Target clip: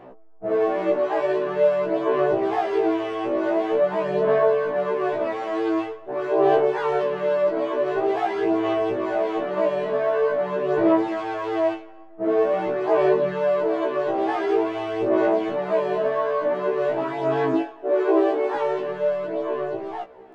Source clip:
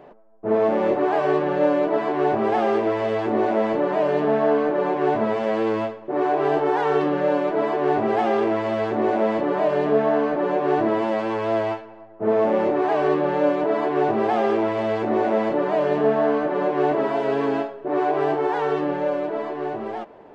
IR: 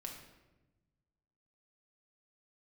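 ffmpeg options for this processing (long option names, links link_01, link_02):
-filter_complex "[0:a]aphaser=in_gain=1:out_gain=1:delay=3.7:decay=0.44:speed=0.46:type=sinusoidal,asettb=1/sr,asplit=3[link_01][link_02][link_03];[link_01]atrim=end=17.534[link_04];[link_02]atrim=start=17.53:end=18.56,asetpts=PTS-STARTPTS,afade=type=in:duration=0.004:curve=qsin,afade=type=out:start_time=1.026:duration=0.004:curve=qsin,lowshelf=frequency=230:width_type=q:width=3:gain=-9.5[link_05];[link_03]atrim=start=18.556[link_06];[link_04][link_05]acrossfade=duration=0.004:curve1=hsin:curve2=qsin[link_07];[link_07][link_06]acrossfade=duration=0.004:curve1=qsin:curve2=hsin,afftfilt=real='re*1.73*eq(mod(b,3),0)':imag='im*1.73*eq(mod(b,3),0)':win_size=2048:overlap=0.75"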